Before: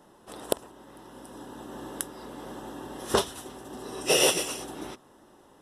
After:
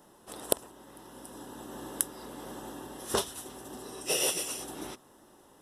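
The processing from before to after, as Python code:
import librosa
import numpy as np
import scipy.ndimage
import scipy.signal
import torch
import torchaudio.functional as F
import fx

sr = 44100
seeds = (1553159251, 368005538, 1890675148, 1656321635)

y = fx.rider(x, sr, range_db=4, speed_s=0.5)
y = fx.high_shelf(y, sr, hz=6500.0, db=9.5)
y = y * 10.0 ** (-6.5 / 20.0)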